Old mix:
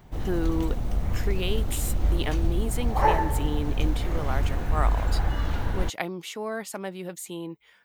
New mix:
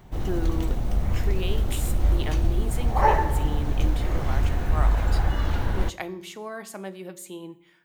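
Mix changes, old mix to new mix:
speech -7.0 dB; reverb: on, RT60 0.70 s

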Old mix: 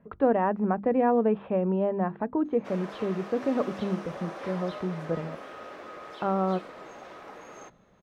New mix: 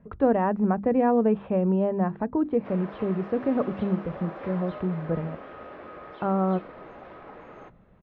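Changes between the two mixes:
background: add Bessel low-pass 2.3 kHz, order 4; master: add bass shelf 140 Hz +12 dB

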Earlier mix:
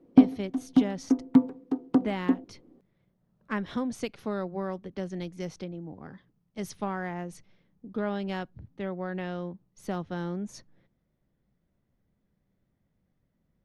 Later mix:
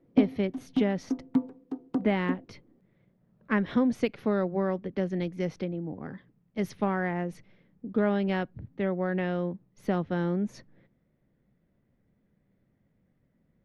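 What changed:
speech: add graphic EQ 125/250/500/2000/8000 Hz +4/+5/+5/+6/-10 dB; background -6.5 dB

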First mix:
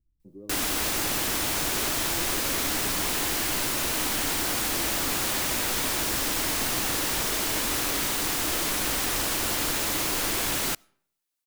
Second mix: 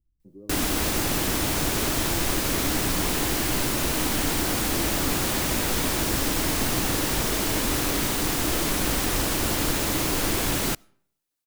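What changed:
speech: add distance through air 490 m; background: add bass shelf 470 Hz +9.5 dB

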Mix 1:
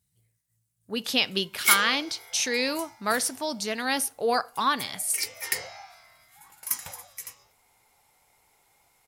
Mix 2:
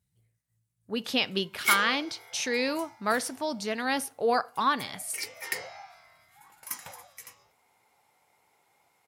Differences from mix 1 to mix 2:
background: add Bessel high-pass 160 Hz, order 2; master: add treble shelf 3.7 kHz -9 dB

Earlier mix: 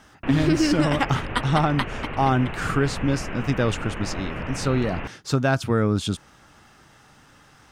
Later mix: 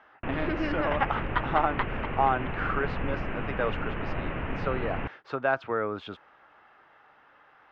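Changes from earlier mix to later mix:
speech: add three-band isolator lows -22 dB, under 430 Hz, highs -18 dB, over 2.9 kHz; master: add distance through air 250 m

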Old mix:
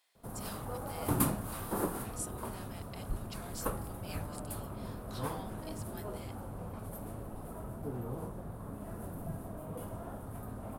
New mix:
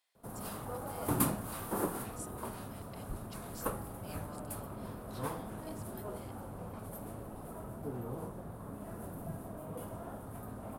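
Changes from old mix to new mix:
speech -6.5 dB; master: add bass shelf 79 Hz -8 dB

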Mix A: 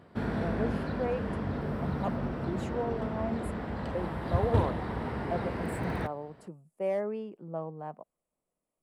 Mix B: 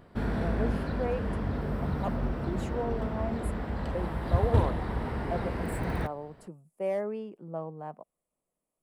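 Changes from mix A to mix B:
background: remove high-pass 87 Hz 12 dB/octave; master: add treble shelf 10 kHz +7.5 dB

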